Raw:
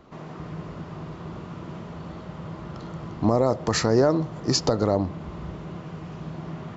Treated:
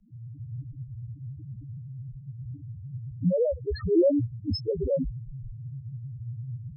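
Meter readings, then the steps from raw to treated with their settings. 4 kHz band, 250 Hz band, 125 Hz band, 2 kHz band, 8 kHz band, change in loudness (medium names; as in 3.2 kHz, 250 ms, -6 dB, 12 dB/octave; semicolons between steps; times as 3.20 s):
-12.0 dB, -3.5 dB, -2.5 dB, under -15 dB, no reading, -4.5 dB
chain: loudest bins only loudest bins 1; frequency shift -38 Hz; trim +6 dB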